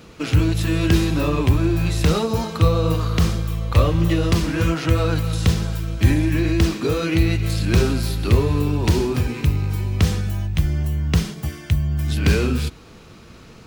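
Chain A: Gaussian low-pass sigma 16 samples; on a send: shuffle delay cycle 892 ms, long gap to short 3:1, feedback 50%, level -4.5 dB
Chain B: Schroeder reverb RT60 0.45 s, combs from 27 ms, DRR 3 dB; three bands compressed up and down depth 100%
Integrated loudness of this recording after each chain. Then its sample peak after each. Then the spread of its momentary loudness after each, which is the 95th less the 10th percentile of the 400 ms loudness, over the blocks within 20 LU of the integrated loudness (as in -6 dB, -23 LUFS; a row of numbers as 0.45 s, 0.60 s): -19.5 LUFS, -17.5 LUFS; -2.5 dBFS, -3.0 dBFS; 4 LU, 3 LU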